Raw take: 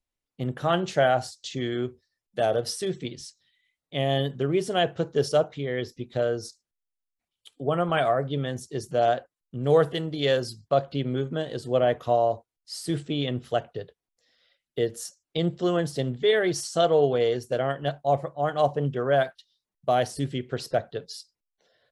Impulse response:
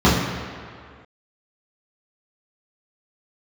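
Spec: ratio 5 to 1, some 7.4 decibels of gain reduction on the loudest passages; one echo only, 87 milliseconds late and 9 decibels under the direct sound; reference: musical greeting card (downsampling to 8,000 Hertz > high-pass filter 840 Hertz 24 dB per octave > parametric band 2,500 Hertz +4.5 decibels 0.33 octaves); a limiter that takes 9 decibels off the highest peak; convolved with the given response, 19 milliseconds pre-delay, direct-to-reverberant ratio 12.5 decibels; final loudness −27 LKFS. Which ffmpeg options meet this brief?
-filter_complex "[0:a]acompressor=threshold=-24dB:ratio=5,alimiter=limit=-22.5dB:level=0:latency=1,aecho=1:1:87:0.355,asplit=2[link_01][link_02];[1:a]atrim=start_sample=2205,adelay=19[link_03];[link_02][link_03]afir=irnorm=-1:irlink=0,volume=-37dB[link_04];[link_01][link_04]amix=inputs=2:normalize=0,aresample=8000,aresample=44100,highpass=frequency=840:width=0.5412,highpass=frequency=840:width=1.3066,equalizer=frequency=2500:width_type=o:width=0.33:gain=4.5,volume=14.5dB"

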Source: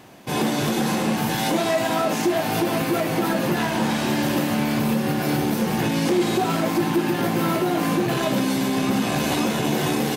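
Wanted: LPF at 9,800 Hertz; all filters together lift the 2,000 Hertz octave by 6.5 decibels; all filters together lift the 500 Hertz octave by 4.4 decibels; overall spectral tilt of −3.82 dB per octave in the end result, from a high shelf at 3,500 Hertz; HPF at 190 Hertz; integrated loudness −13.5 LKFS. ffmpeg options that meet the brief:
ffmpeg -i in.wav -af "highpass=190,lowpass=9800,equalizer=frequency=500:width_type=o:gain=6,equalizer=frequency=2000:width_type=o:gain=6.5,highshelf=frequency=3500:gain=4.5,volume=6dB" out.wav

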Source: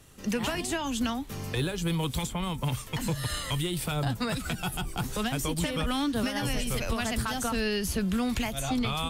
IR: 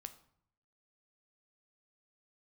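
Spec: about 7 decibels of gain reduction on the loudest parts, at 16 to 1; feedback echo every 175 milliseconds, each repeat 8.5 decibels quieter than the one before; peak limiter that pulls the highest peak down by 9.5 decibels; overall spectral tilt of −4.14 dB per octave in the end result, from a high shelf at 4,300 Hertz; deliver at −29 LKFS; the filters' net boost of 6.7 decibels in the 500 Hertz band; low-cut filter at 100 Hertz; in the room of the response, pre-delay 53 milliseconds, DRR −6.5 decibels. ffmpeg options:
-filter_complex "[0:a]highpass=100,equalizer=frequency=500:width_type=o:gain=8,highshelf=frequency=4300:gain=7.5,acompressor=threshold=-28dB:ratio=16,alimiter=level_in=2dB:limit=-24dB:level=0:latency=1,volume=-2dB,aecho=1:1:175|350|525|700:0.376|0.143|0.0543|0.0206,asplit=2[link_01][link_02];[1:a]atrim=start_sample=2205,adelay=53[link_03];[link_02][link_03]afir=irnorm=-1:irlink=0,volume=11.5dB[link_04];[link_01][link_04]amix=inputs=2:normalize=0,volume=-2dB"

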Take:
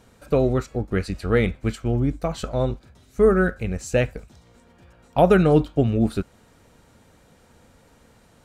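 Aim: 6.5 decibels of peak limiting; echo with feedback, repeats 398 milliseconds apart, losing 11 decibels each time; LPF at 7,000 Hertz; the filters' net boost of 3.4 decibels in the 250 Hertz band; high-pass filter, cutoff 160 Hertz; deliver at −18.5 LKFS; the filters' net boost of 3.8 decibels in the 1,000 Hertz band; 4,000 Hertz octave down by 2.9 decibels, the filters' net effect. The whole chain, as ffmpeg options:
ffmpeg -i in.wav -af "highpass=160,lowpass=7000,equalizer=frequency=250:width_type=o:gain=5.5,equalizer=frequency=1000:width_type=o:gain=5.5,equalizer=frequency=4000:width_type=o:gain=-4,alimiter=limit=-7.5dB:level=0:latency=1,aecho=1:1:398|796|1194:0.282|0.0789|0.0221,volume=3dB" out.wav

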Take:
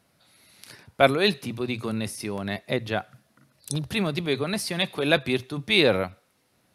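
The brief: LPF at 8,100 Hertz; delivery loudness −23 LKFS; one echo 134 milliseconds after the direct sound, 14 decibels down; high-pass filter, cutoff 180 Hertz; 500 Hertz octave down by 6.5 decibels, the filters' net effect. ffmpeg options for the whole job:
ffmpeg -i in.wav -af "highpass=180,lowpass=8100,equalizer=frequency=500:width_type=o:gain=-8.5,aecho=1:1:134:0.2,volume=4.5dB" out.wav

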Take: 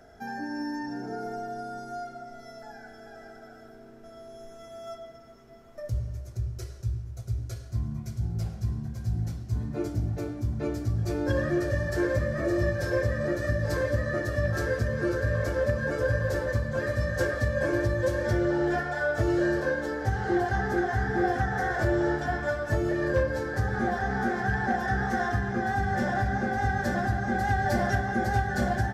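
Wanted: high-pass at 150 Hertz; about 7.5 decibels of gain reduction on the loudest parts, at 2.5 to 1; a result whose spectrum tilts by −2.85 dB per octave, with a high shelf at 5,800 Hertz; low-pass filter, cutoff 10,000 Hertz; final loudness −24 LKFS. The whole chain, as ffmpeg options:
ffmpeg -i in.wav -af "highpass=150,lowpass=10000,highshelf=frequency=5800:gain=-5.5,acompressor=threshold=-34dB:ratio=2.5,volume=12dB" out.wav

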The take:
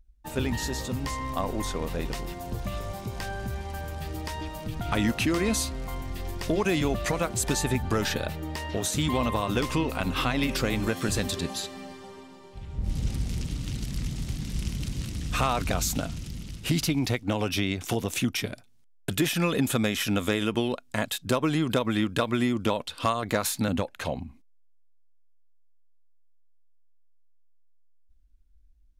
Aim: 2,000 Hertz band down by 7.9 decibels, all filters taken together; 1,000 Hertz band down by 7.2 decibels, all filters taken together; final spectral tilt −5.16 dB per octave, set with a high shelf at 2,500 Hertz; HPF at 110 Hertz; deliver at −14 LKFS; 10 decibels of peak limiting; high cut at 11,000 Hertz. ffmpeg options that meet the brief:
ffmpeg -i in.wav -af "highpass=110,lowpass=11000,equalizer=frequency=1000:width_type=o:gain=-7,equalizer=frequency=2000:width_type=o:gain=-5,highshelf=frequency=2500:gain=-6.5,volume=21.5dB,alimiter=limit=-2.5dB:level=0:latency=1" out.wav

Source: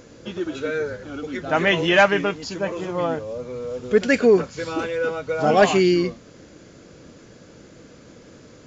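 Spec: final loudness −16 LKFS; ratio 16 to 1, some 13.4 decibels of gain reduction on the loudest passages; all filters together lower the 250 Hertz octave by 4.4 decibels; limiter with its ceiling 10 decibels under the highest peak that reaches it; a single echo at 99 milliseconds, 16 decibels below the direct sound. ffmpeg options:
ffmpeg -i in.wav -af "equalizer=frequency=250:width_type=o:gain=-7,acompressor=threshold=-24dB:ratio=16,alimiter=limit=-23.5dB:level=0:latency=1,aecho=1:1:99:0.158,volume=16.5dB" out.wav

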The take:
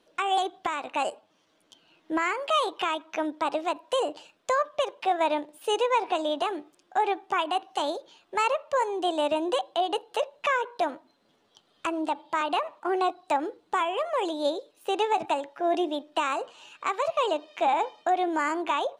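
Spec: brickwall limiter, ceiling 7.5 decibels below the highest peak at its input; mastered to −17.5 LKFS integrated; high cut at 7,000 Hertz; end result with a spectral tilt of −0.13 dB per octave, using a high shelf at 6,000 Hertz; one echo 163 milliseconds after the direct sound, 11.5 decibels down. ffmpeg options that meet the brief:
ffmpeg -i in.wav -af "lowpass=7000,highshelf=frequency=6000:gain=-9,alimiter=limit=-22.5dB:level=0:latency=1,aecho=1:1:163:0.266,volume=15dB" out.wav

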